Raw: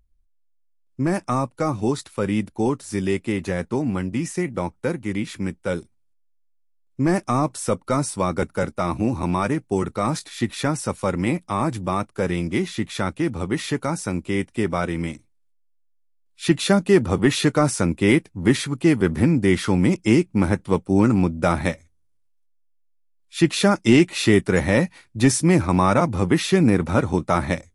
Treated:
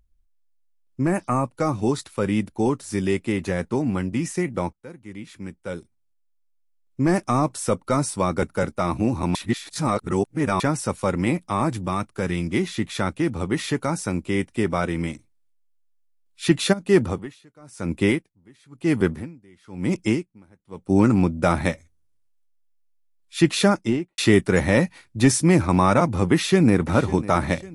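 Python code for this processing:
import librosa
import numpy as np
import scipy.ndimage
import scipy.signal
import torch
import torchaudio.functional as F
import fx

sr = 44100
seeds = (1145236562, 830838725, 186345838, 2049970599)

y = fx.spec_repair(x, sr, seeds[0], start_s=1.1, length_s=0.32, low_hz=3000.0, high_hz=6200.0, source='both')
y = fx.dynamic_eq(y, sr, hz=560.0, q=0.88, threshold_db=-33.0, ratio=4.0, max_db=-5, at=(11.81, 12.54))
y = fx.tremolo_db(y, sr, hz=1.0, depth_db=34, at=(16.72, 20.88), fade=0.02)
y = fx.studio_fade_out(y, sr, start_s=23.61, length_s=0.57)
y = fx.echo_throw(y, sr, start_s=26.32, length_s=0.62, ms=550, feedback_pct=50, wet_db=-16.5)
y = fx.edit(y, sr, fx.fade_in_from(start_s=4.73, length_s=2.4, floor_db=-20.0),
    fx.reverse_span(start_s=9.35, length_s=1.25), tone=tone)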